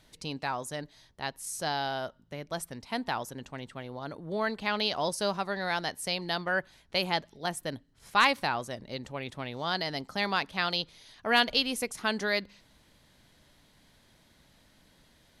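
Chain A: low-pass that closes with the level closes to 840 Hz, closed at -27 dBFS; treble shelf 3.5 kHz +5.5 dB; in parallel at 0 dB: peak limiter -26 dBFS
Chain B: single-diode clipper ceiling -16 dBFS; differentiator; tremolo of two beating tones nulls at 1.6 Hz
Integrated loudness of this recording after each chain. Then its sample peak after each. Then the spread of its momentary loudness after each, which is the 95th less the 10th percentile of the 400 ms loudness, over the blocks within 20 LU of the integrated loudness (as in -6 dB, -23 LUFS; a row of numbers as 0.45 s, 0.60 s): -31.0 LUFS, -43.5 LUFS; -13.5 dBFS, -19.5 dBFS; 7 LU, 19 LU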